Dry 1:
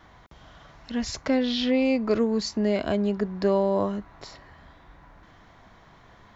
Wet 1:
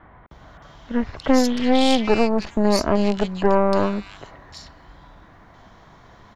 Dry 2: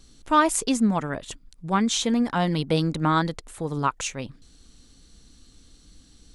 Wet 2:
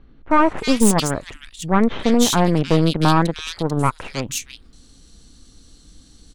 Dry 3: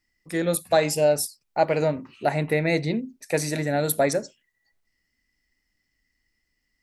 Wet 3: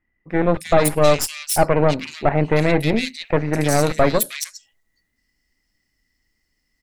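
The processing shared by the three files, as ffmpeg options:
-filter_complex "[0:a]asoftclip=type=tanh:threshold=-11.5dB,aeval=exprs='0.251*(cos(1*acos(clip(val(0)/0.251,-1,1)))-cos(1*PI/2))+0.0708*(cos(4*acos(clip(val(0)/0.251,-1,1)))-cos(4*PI/2))':c=same,acrossover=split=2300[a][b];[b]adelay=310[c];[a][c]amix=inputs=2:normalize=0,volume=5dB"

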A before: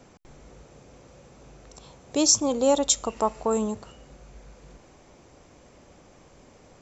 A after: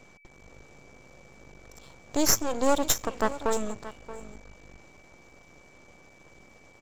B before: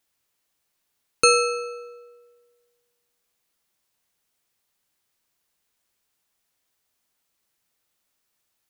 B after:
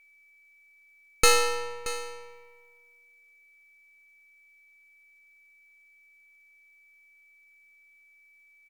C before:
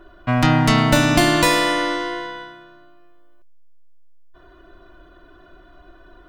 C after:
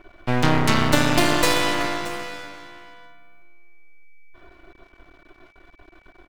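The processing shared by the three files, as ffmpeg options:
-af "aecho=1:1:627:0.178,aeval=exprs='max(val(0),0)':c=same,aeval=exprs='val(0)+0.00126*sin(2*PI*2300*n/s)':c=same,volume=1dB"

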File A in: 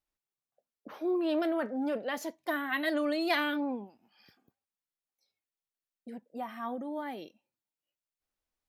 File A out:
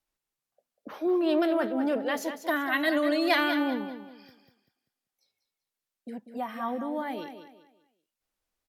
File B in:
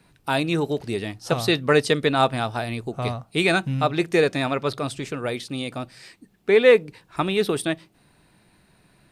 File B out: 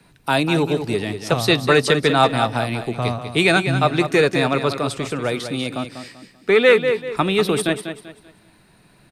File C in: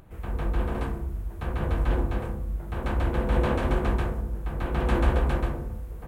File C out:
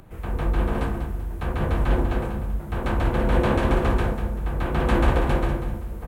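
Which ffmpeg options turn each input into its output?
-filter_complex "[0:a]equalizer=f=62:w=4:g=-5.5,aecho=1:1:194|388|582|776:0.335|0.107|0.0343|0.011,acrossover=split=220|760[a][b][c];[b]asoftclip=type=tanh:threshold=-17dB[d];[a][d][c]amix=inputs=3:normalize=0,volume=4.5dB" -ar 48000 -c:a libvorbis -b:a 192k

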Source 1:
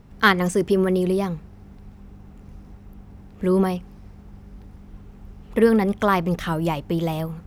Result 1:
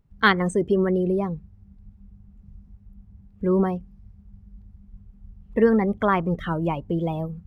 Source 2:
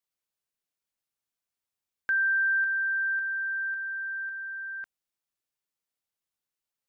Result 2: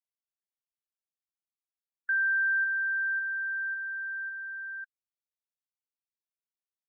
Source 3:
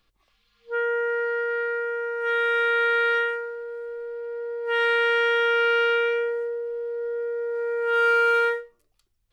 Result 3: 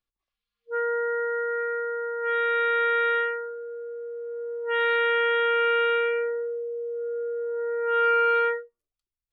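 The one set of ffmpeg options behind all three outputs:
-af "afftdn=nr=20:nf=-31,volume=-1.5dB"

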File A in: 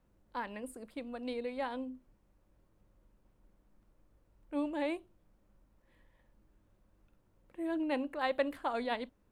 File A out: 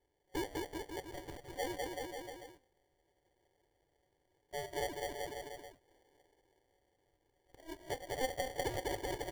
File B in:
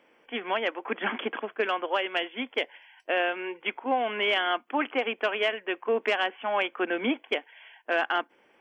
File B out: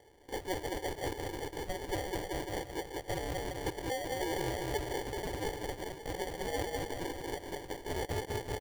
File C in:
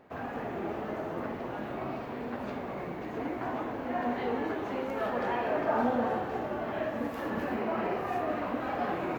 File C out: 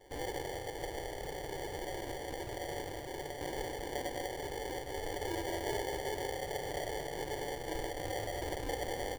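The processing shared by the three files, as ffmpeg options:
-af "aecho=1:1:2.3:0.84,aecho=1:1:200|380|542|687.8|819:0.631|0.398|0.251|0.158|0.1,acompressor=threshold=-34dB:ratio=4,afftfilt=real='re*between(b*sr/4096,540,5700)':imag='im*between(b*sr/4096,540,5700)':win_size=4096:overlap=0.75,acrusher=samples=34:mix=1:aa=0.000001,volume=1dB"

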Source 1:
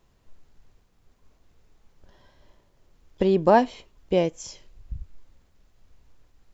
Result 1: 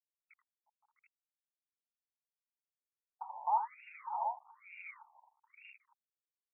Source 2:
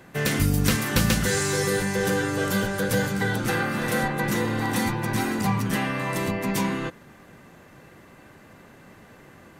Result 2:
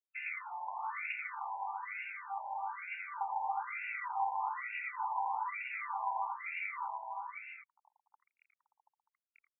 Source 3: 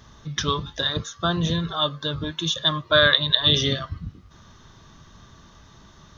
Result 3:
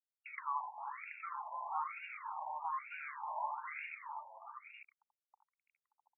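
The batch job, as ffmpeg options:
-filter_complex "[0:a]aemphasis=mode=reproduction:type=cd,aeval=exprs='val(0)+0.00447*sin(2*PI*2800*n/s)':c=same,acrossover=split=290|470|1400[a][b][c][d];[a]alimiter=limit=-21.5dB:level=0:latency=1:release=213[e];[e][b][c][d]amix=inputs=4:normalize=0,acrossover=split=410|1800|3600[f][g][h][i];[f]acompressor=threshold=-31dB:ratio=4[j];[g]acompressor=threshold=-32dB:ratio=4[k];[h]acompressor=threshold=-39dB:ratio=4[l];[i]acompressor=threshold=-40dB:ratio=4[m];[j][k][l][m]amix=inputs=4:normalize=0,acrusher=bits=5:mix=0:aa=0.000001,asplit=3[n][o][p];[n]bandpass=f=300:t=q:w=8,volume=0dB[q];[o]bandpass=f=870:t=q:w=8,volume=-6dB[r];[p]bandpass=f=2.24k:t=q:w=8,volume=-9dB[s];[q][r][s]amix=inputs=3:normalize=0,aecho=1:1:84|358|518|579|656|731:0.531|0.168|0.211|0.211|0.355|0.473,afftfilt=real='re*between(b*sr/1024,750*pow(2000/750,0.5+0.5*sin(2*PI*1.1*pts/sr))/1.41,750*pow(2000/750,0.5+0.5*sin(2*PI*1.1*pts/sr))*1.41)':imag='im*between(b*sr/1024,750*pow(2000/750,0.5+0.5*sin(2*PI*1.1*pts/sr))/1.41,750*pow(2000/750,0.5+0.5*sin(2*PI*1.1*pts/sr))*1.41)':win_size=1024:overlap=0.75,volume=13dB"

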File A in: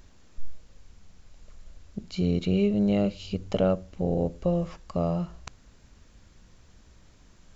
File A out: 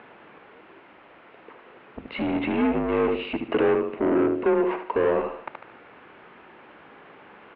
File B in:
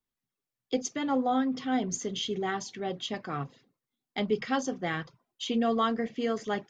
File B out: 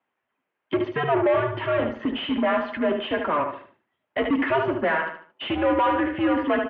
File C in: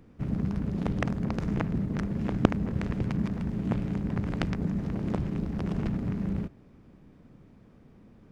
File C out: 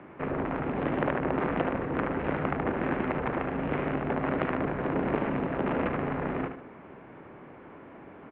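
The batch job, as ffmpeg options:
-filter_complex "[0:a]aecho=1:1:74|148|222|296:0.335|0.107|0.0343|0.011,asplit=2[a][b];[b]highpass=f=720:p=1,volume=36dB,asoftclip=type=tanh:threshold=-2.5dB[c];[a][c]amix=inputs=2:normalize=0,lowpass=f=1.3k:p=1,volume=-6dB,highpass=f=380:t=q:w=0.5412,highpass=f=380:t=q:w=1.307,lowpass=f=3k:t=q:w=0.5176,lowpass=f=3k:t=q:w=0.7071,lowpass=f=3k:t=q:w=1.932,afreqshift=-150,volume=-7.5dB"

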